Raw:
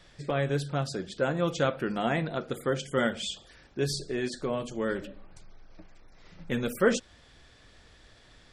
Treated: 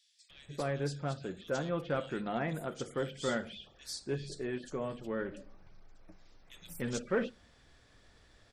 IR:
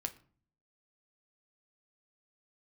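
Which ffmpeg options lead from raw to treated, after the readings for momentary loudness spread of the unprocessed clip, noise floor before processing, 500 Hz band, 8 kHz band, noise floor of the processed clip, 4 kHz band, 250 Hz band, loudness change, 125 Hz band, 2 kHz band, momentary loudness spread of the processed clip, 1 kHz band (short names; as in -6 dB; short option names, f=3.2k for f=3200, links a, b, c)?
8 LU, -57 dBFS, -6.5 dB, -6.0 dB, -64 dBFS, -8.0 dB, -6.5 dB, -7.0 dB, -6.5 dB, -7.5 dB, 11 LU, -6.5 dB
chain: -filter_complex "[0:a]asoftclip=type=tanh:threshold=-16dB,acrossover=split=3100[a][b];[a]adelay=300[c];[c][b]amix=inputs=2:normalize=0,asplit=2[d][e];[1:a]atrim=start_sample=2205[f];[e][f]afir=irnorm=-1:irlink=0,volume=-11.5dB[g];[d][g]amix=inputs=2:normalize=0,volume=-7.5dB"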